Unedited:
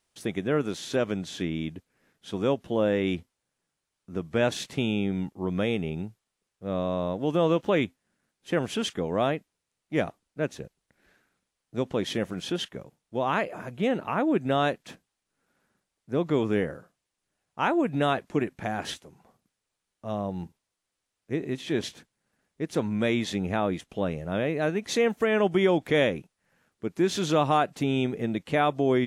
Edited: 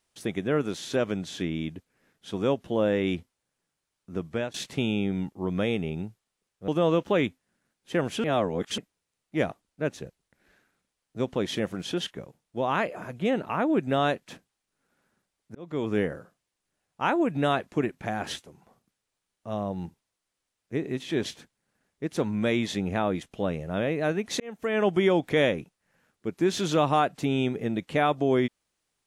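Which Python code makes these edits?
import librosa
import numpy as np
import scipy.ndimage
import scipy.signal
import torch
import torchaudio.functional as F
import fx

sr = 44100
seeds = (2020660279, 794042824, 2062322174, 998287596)

y = fx.edit(x, sr, fx.fade_out_to(start_s=4.26, length_s=0.28, floor_db=-22.0),
    fx.cut(start_s=6.68, length_s=0.58),
    fx.reverse_span(start_s=8.82, length_s=0.54),
    fx.fade_in_span(start_s=16.13, length_s=0.43),
    fx.fade_in_span(start_s=24.98, length_s=0.45), tone=tone)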